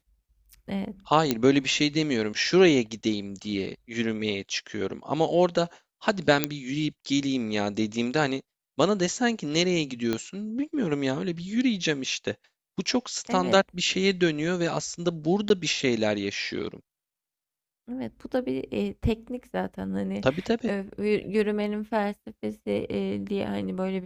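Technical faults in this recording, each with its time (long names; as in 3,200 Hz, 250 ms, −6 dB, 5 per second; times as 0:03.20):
0:01.31: click −8 dBFS
0:06.44: click −5 dBFS
0:10.13: click −13 dBFS
0:15.49–0:15.50: drop-out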